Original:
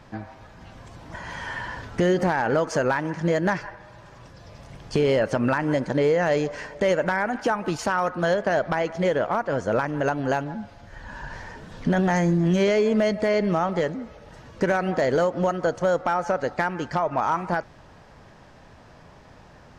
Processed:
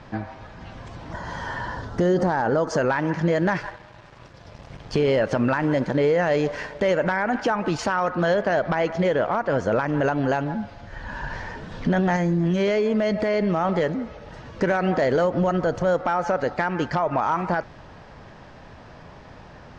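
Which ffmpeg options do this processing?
ffmpeg -i in.wav -filter_complex "[0:a]asettb=1/sr,asplit=3[link_01][link_02][link_03];[link_01]atrim=end=1.134[link_04];[link_02]atrim=start=1.13:end=2.78,asetpts=PTS-STARTPTS,afade=type=in:duration=0.004:curve=qsin,afade=type=out:start_time=1.646:duration=0.004:curve=qsin,equalizer=frequency=2400:width_type=o:width=0.79:gain=-12.5[link_05];[link_03]atrim=start=2.776[link_06];[link_04][link_05]acrossfade=duration=0.004:curve1=hsin:curve2=qsin[link_07];[link_07][link_06]acrossfade=duration=0.004:curve1=qsin:curve2=hsin,asettb=1/sr,asplit=3[link_08][link_09][link_10];[link_08]atrim=end=3.384[link_11];[link_09]atrim=start=3.38:end=6.95,asetpts=PTS-STARTPTS,afade=type=in:duration=0.004:curve=qsin,afade=type=out:start_time=3.566:duration=0.004:curve=qsin,aeval=exprs='sgn(val(0))*max(abs(val(0))-0.00335,0)':channel_layout=same[link_12];[link_10]atrim=start=6.946[link_13];[link_11][link_12]acrossfade=duration=0.004:curve1=hsin:curve2=qsin[link_14];[link_14][link_13]acrossfade=duration=0.004:curve1=qsin:curve2=hsin,asettb=1/sr,asplit=3[link_15][link_16][link_17];[link_15]atrim=end=12.164[link_18];[link_16]atrim=start=12.16:end=13.65,asetpts=PTS-STARTPTS,afade=type=in:duration=0.004:curve=qsin,afade=type=out:start_time=1.486:duration=0.004:curve=qsin,acompressor=threshold=-23dB:ratio=6:attack=3.2:release=140:knee=1:detection=peak[link_19];[link_17]atrim=start=13.646[link_20];[link_18][link_19]acrossfade=duration=0.004:curve1=hsin:curve2=qsin[link_21];[link_21][link_20]acrossfade=duration=0.004:curve1=qsin:curve2=hsin,asettb=1/sr,asplit=3[link_22][link_23][link_24];[link_22]atrim=end=15.244[link_25];[link_23]atrim=start=15.24:end=15.94,asetpts=PTS-STARTPTS,afade=type=in:duration=0.004:curve=qsin,afade=type=out:start_time=0.696:duration=0.004:curve=qsin,lowshelf=frequency=170:gain=8[link_26];[link_24]atrim=start=15.936[link_27];[link_25][link_26]acrossfade=duration=0.004:curve1=hsin:curve2=qsin[link_28];[link_28][link_27]acrossfade=duration=0.004:curve1=qsin:curve2=hsin,lowpass=5300,alimiter=limit=-18.5dB:level=0:latency=1:release=49,volume=5dB" out.wav

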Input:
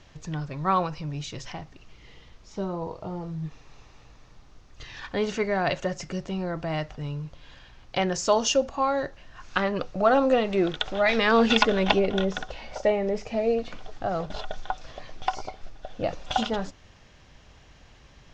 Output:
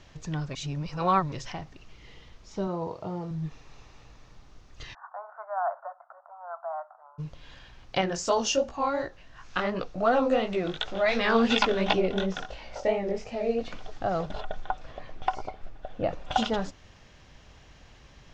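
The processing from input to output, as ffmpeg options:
ffmpeg -i in.wav -filter_complex "[0:a]asettb=1/sr,asplit=3[link_01][link_02][link_03];[link_01]atrim=end=2.674[link_04];[link_02]atrim=start=2.67:end=3.31,asetpts=PTS-STARTPTS,afade=type=in:duration=0.004:curve=qsin,afade=type=out:start_time=0.636:duration=0.004:curve=qsin,highpass=95[link_05];[link_03]atrim=start=3.306[link_06];[link_04][link_05]acrossfade=duration=0.004:curve1=hsin:curve2=qsin[link_07];[link_07][link_06]acrossfade=duration=0.004:curve1=qsin:curve2=hsin,asplit=3[link_08][link_09][link_10];[link_08]afade=type=out:start_time=4.93:duration=0.02[link_11];[link_09]asuperpass=centerf=960:order=12:qfactor=1.2,afade=type=in:start_time=4.93:duration=0.02,afade=type=out:start_time=7.18:duration=0.02[link_12];[link_10]afade=type=in:start_time=7.18:duration=0.02[link_13];[link_11][link_12][link_13]amix=inputs=3:normalize=0,asettb=1/sr,asplit=3[link_14][link_15][link_16];[link_14]atrim=end=8.014[link_17];[link_15]atrim=start=8.01:end=13.61,asetpts=PTS-STARTPTS,afade=type=in:duration=0.004:curve=qsin,afade=type=out:start_time=5.596:duration=0.004:curve=qsin,flanger=delay=16:depth=6.6:speed=2.8[link_18];[link_16]atrim=start=13.606[link_19];[link_17][link_18]acrossfade=duration=0.004:curve1=hsin:curve2=qsin[link_20];[link_20][link_19]acrossfade=duration=0.004:curve1=qsin:curve2=hsin,asettb=1/sr,asplit=3[link_21][link_22][link_23];[link_21]atrim=end=14.314[link_24];[link_22]atrim=start=14.31:end=16.36,asetpts=PTS-STARTPTS,afade=type=in:duration=0.004:curve=qsin,afade=type=out:start_time=2.046:duration=0.004:curve=qsin,equalizer=frequency=5800:width=0.7:gain=-11[link_25];[link_23]atrim=start=16.356[link_26];[link_24][link_25]acrossfade=duration=0.004:curve1=hsin:curve2=qsin[link_27];[link_27][link_26]acrossfade=duration=0.004:curve1=qsin:curve2=hsin,asplit=3[link_28][link_29][link_30];[link_28]atrim=end=0.552[link_31];[link_29]atrim=start=0.548:end=1.322,asetpts=PTS-STARTPTS,areverse[link_32];[link_30]atrim=start=1.318[link_33];[link_31][link_32]acrossfade=duration=0.004:curve1=hsin:curve2=hsin[link_34];[link_34][link_33]acrossfade=duration=0.004:curve1=hsin:curve2=hsin" out.wav

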